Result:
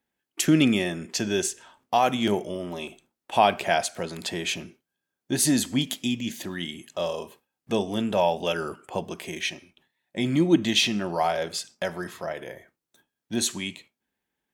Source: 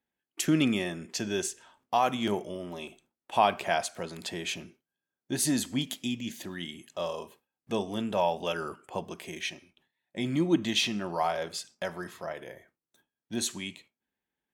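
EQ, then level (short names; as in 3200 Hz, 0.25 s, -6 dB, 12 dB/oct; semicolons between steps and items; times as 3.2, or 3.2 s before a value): dynamic EQ 1100 Hz, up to -5 dB, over -46 dBFS, Q 2.5; +5.5 dB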